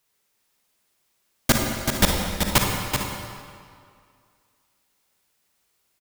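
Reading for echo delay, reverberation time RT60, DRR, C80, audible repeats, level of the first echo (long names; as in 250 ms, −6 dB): 58 ms, 2.2 s, −0.5 dB, 1.5 dB, 3, −9.5 dB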